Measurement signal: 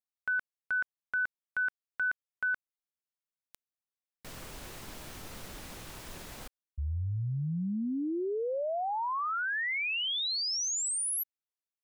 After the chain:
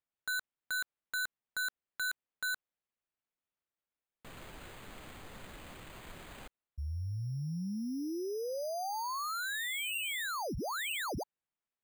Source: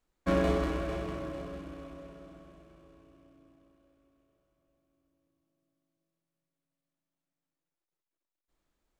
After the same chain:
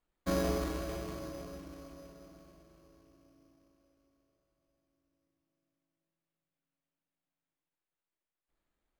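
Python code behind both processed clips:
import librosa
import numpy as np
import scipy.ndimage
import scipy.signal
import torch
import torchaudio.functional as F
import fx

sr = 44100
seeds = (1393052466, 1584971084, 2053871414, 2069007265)

y = np.repeat(x[::8], 8)[:len(x)]
y = F.gain(torch.from_numpy(y), -4.5).numpy()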